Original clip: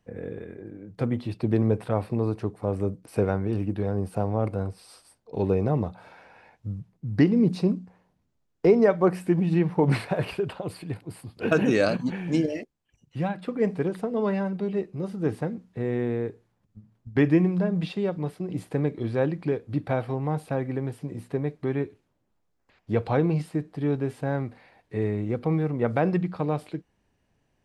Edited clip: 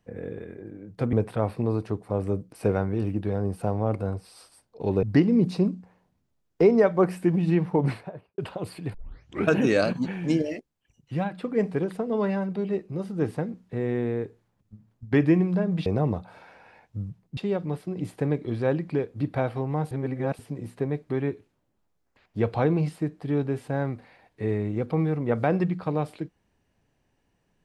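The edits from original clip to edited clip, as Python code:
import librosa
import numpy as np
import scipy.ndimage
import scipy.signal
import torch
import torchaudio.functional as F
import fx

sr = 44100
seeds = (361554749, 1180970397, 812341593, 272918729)

y = fx.studio_fade_out(x, sr, start_s=9.62, length_s=0.8)
y = fx.edit(y, sr, fx.cut(start_s=1.13, length_s=0.53),
    fx.move(start_s=5.56, length_s=1.51, to_s=17.9),
    fx.tape_start(start_s=10.98, length_s=0.55),
    fx.reverse_span(start_s=20.44, length_s=0.48), tone=tone)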